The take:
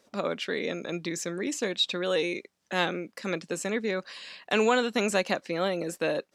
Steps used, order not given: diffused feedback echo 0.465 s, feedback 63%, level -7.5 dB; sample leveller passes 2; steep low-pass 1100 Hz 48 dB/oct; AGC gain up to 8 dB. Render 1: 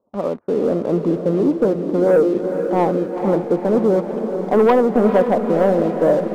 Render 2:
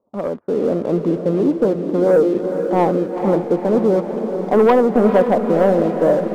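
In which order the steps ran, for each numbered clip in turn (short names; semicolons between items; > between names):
AGC > steep low-pass > sample leveller > diffused feedback echo; steep low-pass > sample leveller > AGC > diffused feedback echo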